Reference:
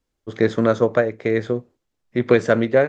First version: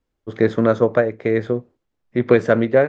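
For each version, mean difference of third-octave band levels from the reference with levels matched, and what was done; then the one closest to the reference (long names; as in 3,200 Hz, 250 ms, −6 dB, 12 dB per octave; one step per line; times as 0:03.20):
1.0 dB: high-shelf EQ 4,300 Hz −11.5 dB
level +1.5 dB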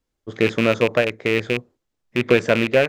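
5.0 dB: loose part that buzzes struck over −27 dBFS, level −10 dBFS
level −1 dB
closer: first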